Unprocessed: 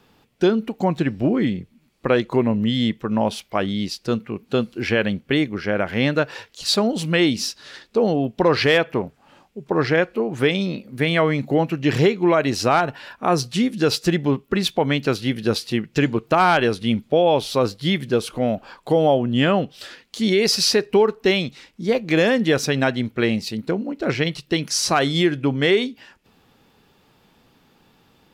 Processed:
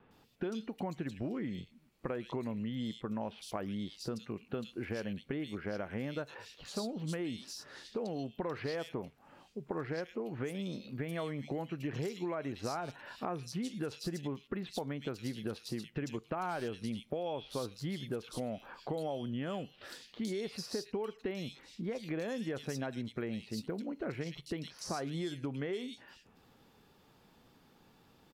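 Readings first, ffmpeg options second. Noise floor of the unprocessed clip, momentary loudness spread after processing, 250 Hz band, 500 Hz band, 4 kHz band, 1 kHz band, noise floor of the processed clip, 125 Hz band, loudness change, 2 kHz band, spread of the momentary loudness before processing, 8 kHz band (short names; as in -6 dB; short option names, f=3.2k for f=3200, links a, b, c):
-60 dBFS, 5 LU, -17.5 dB, -19.5 dB, -22.0 dB, -20.0 dB, -65 dBFS, -17.0 dB, -19.0 dB, -22.5 dB, 8 LU, -20.0 dB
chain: -filter_complex "[0:a]acompressor=threshold=-30dB:ratio=1.5,acrossover=split=2700[a][b];[b]adelay=110[c];[a][c]amix=inputs=2:normalize=0,acrossover=split=1500|5500[d][e][f];[d]acompressor=threshold=-29dB:ratio=4[g];[e]acompressor=threshold=-46dB:ratio=4[h];[f]acompressor=threshold=-44dB:ratio=4[i];[g][h][i]amix=inputs=3:normalize=0,volume=-6.5dB"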